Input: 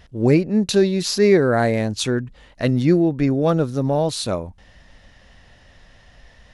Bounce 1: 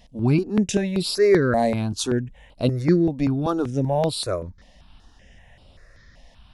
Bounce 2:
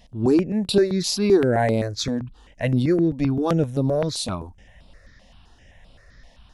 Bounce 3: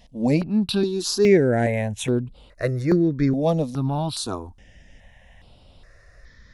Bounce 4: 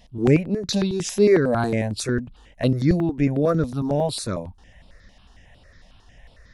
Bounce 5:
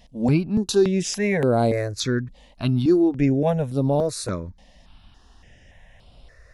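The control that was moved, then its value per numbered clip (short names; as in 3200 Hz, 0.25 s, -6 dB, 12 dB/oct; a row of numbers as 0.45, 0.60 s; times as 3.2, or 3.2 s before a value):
step phaser, rate: 5.2, 7.7, 2.4, 11, 3.5 Hz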